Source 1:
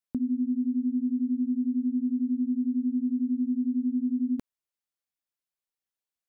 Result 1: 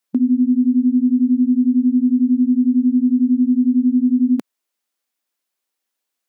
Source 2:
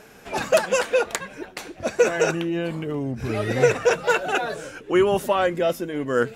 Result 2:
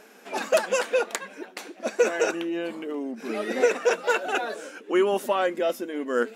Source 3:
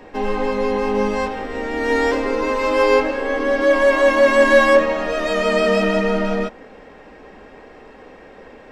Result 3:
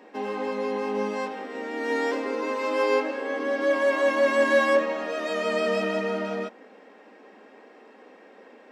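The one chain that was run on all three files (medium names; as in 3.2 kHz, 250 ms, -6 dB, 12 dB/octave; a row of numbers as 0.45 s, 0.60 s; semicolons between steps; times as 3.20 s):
brick-wall FIR high-pass 190 Hz; peak normalisation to -9 dBFS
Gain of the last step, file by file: +12.0 dB, -3.0 dB, -8.0 dB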